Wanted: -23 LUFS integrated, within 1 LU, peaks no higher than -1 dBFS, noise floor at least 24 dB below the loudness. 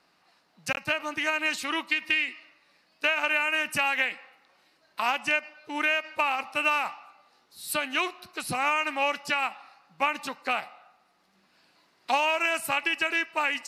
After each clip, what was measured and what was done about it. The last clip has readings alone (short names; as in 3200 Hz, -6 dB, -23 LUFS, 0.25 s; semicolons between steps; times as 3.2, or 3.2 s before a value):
loudness -27.0 LUFS; peak -11.5 dBFS; loudness target -23.0 LUFS
-> gain +4 dB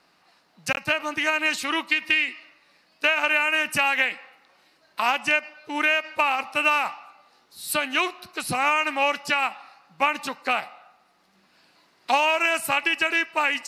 loudness -23.0 LUFS; peak -7.5 dBFS; noise floor -63 dBFS